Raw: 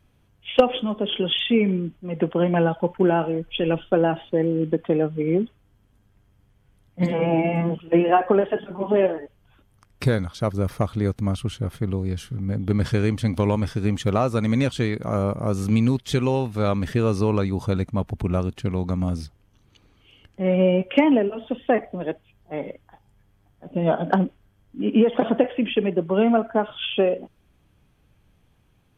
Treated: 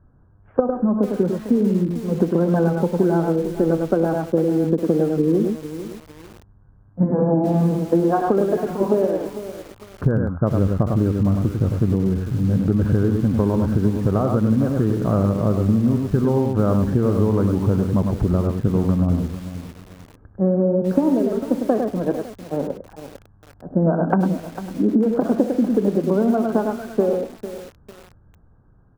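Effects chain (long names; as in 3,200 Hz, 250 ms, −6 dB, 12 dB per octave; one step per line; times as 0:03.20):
low-shelf EQ 150 Hz +5.5 dB
on a send: multi-tap delay 60/101 ms −18.5/−6.5 dB
on the sum: dynamic equaliser 250 Hz, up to +5 dB, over −27 dBFS, Q 0.7
Chebyshev low-pass filter 1,600 Hz, order 6
downward compressor 12 to 1, threshold −18 dBFS, peak gain reduction 13 dB
feedback echo at a low word length 450 ms, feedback 35%, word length 6 bits, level −12 dB
level +4 dB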